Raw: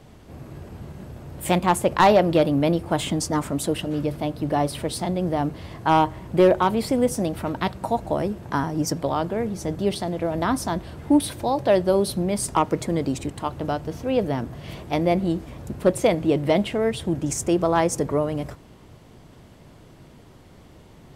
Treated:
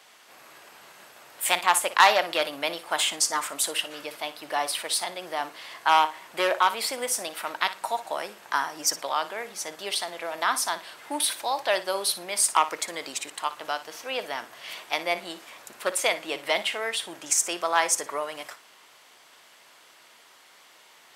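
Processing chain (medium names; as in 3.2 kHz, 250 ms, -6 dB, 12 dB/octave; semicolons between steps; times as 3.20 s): high-pass 1.3 kHz 12 dB/octave; on a send: flutter echo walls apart 9.9 m, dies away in 0.24 s; on the sum: trim +6 dB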